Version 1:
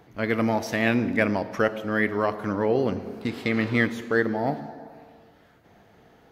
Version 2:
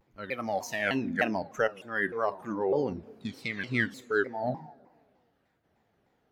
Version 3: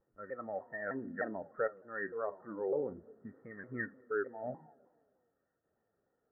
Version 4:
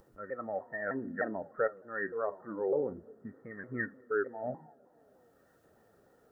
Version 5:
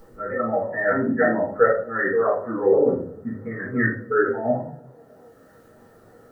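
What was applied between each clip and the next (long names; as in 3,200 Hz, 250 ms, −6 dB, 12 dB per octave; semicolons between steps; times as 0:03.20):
noise reduction from a noise print of the clip's start 13 dB; pitch modulation by a square or saw wave saw down 3.3 Hz, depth 250 cents; level −3.5 dB
Chebyshev low-pass with heavy ripple 1,900 Hz, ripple 9 dB; level −5 dB
upward compression, threshold −56 dBFS; level +3.5 dB
convolution reverb RT60 0.45 s, pre-delay 4 ms, DRR −7.5 dB; level +4 dB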